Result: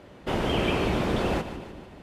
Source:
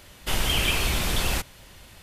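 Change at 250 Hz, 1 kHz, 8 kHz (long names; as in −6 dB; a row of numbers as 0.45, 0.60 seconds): +7.5, +2.5, −16.5 decibels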